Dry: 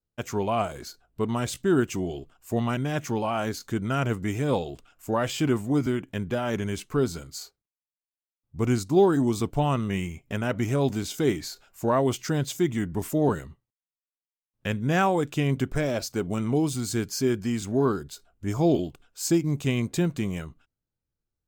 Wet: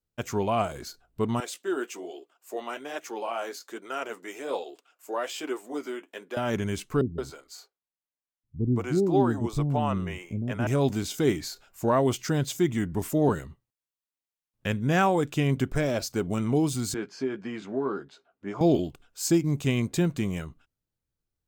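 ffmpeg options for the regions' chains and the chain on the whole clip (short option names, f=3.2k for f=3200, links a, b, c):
-filter_complex "[0:a]asettb=1/sr,asplit=3[a][b][c];[a]atrim=end=1.404[d];[b]atrim=start=1.4:end=6.37,asetpts=PTS-STARTPTS,afade=t=in:d=0.004:c=qsin,afade=t=out:st=4.966:d=0.004:c=qsin,highpass=f=360:w=0.5412,highpass=f=360:w=1.3066,flanger=delay=2.3:depth=9.5:regen=-43:speed=1.2:shape=sinusoidal[e];[c]atrim=start=6.366[f];[d][e]acrossfade=d=0.004:c1=hsin:c2=qsin[g];[g][f]acrossfade=d=0.004:c1=qsin:c2=hsin,asettb=1/sr,asplit=3[h][i][j];[h]atrim=end=7.014[k];[i]atrim=start=7.01:end=10.67,asetpts=PTS-STARTPTS,afade=t=in:d=0.004:c=qsin,afade=t=out:st=3.656:d=0.004:c=qsin,highshelf=f=2.9k:g=-9.5,acrossover=split=380[l][m];[m]adelay=170[n];[l][n]amix=inputs=2:normalize=0,atrim=end_sample=161406[o];[j]atrim=start=10.666[p];[k][o]acrossfade=d=0.004:c1=hsin:c2=qsin[q];[q][p]acrossfade=d=0.004:c1=qsin:c2=hsin,asettb=1/sr,asplit=3[r][s][t];[r]atrim=end=16.944[u];[s]atrim=start=16.94:end=18.61,asetpts=PTS-STARTPTS,afade=t=in:d=0.004:c=qsin,afade=t=out:st=1.666:d=0.004:c=qsin,highpass=290,lowpass=2.4k,acompressor=threshold=-27dB:ratio=2.5:attack=3.2:release=140:knee=1:detection=peak,asplit=2[v][w];[w]adelay=15,volume=-7.5dB[x];[v][x]amix=inputs=2:normalize=0,atrim=end_sample=73647[y];[t]atrim=start=18.606[z];[u][y]acrossfade=d=0.004:c1=hsin:c2=qsin[aa];[aa][z]acrossfade=d=0.004:c1=qsin:c2=hsin"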